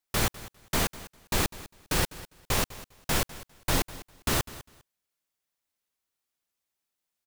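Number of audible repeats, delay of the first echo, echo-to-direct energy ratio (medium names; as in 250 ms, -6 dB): 2, 201 ms, -17.5 dB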